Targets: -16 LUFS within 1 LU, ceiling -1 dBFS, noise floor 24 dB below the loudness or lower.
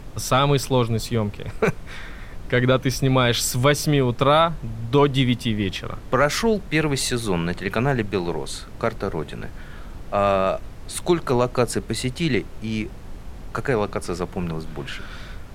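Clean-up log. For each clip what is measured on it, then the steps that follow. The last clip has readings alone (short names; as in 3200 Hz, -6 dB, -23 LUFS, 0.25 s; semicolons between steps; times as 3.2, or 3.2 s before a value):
noise floor -38 dBFS; noise floor target -47 dBFS; loudness -22.5 LUFS; peak -5.5 dBFS; loudness target -16.0 LUFS
-> noise print and reduce 9 dB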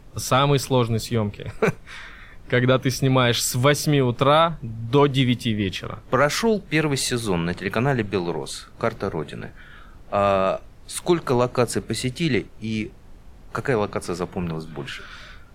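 noise floor -46 dBFS; noise floor target -47 dBFS
-> noise print and reduce 6 dB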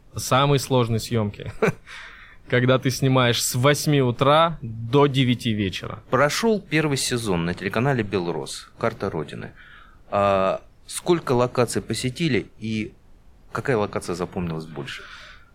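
noise floor -50 dBFS; loudness -22.5 LUFS; peak -5.5 dBFS; loudness target -16.0 LUFS
-> gain +6.5 dB; limiter -1 dBFS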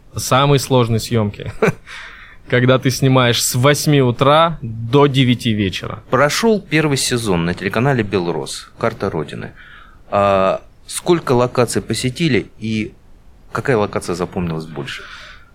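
loudness -16.5 LUFS; peak -1.0 dBFS; noise floor -44 dBFS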